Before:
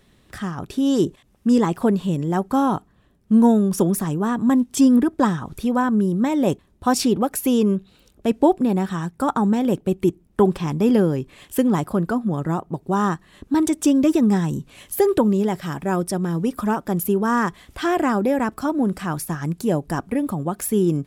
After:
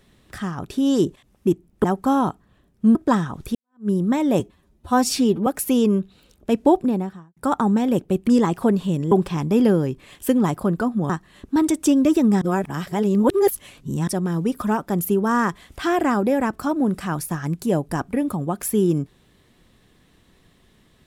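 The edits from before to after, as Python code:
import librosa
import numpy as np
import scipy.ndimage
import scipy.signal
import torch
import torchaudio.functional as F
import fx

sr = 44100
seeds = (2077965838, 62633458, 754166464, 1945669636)

y = fx.studio_fade_out(x, sr, start_s=8.52, length_s=0.61)
y = fx.edit(y, sr, fx.swap(start_s=1.47, length_s=0.84, other_s=10.04, other_length_s=0.37),
    fx.cut(start_s=3.42, length_s=1.65),
    fx.fade_in_span(start_s=5.67, length_s=0.34, curve='exp'),
    fx.stretch_span(start_s=6.52, length_s=0.71, factor=1.5),
    fx.cut(start_s=12.39, length_s=0.69),
    fx.reverse_span(start_s=14.4, length_s=1.66), tone=tone)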